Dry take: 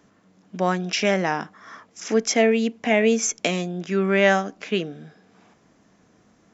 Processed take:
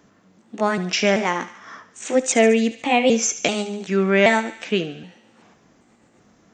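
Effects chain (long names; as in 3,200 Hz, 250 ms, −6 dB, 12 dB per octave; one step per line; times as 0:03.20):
pitch shifter gated in a rhythm +2.5 semitones, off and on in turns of 387 ms
feedback echo with a high-pass in the loop 72 ms, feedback 63%, high-pass 840 Hz, level −13 dB
level +2.5 dB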